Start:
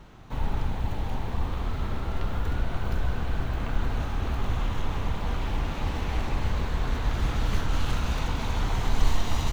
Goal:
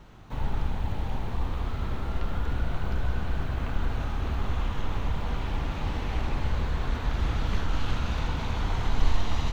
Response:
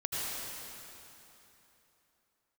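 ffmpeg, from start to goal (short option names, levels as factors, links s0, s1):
-filter_complex "[0:a]acrossover=split=5800[s0][s1];[s1]acompressor=threshold=0.00112:ratio=4:attack=1:release=60[s2];[s0][s2]amix=inputs=2:normalize=0[s3];[1:a]atrim=start_sample=2205,atrim=end_sample=3528[s4];[s3][s4]afir=irnorm=-1:irlink=0"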